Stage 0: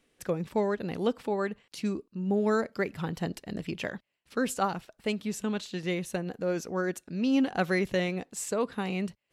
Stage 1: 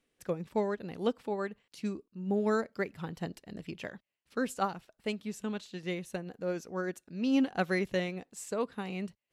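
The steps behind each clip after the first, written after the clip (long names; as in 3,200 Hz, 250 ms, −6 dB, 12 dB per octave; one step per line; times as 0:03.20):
expander for the loud parts 1.5 to 1, over −36 dBFS
level −1.5 dB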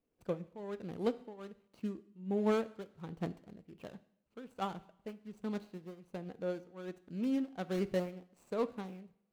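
running median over 25 samples
shaped tremolo triangle 1.3 Hz, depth 90%
coupled-rooms reverb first 0.65 s, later 1.8 s, from −26 dB, DRR 14 dB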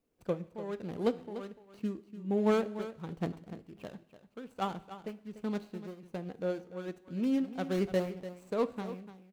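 single-tap delay 294 ms −13 dB
level +3.5 dB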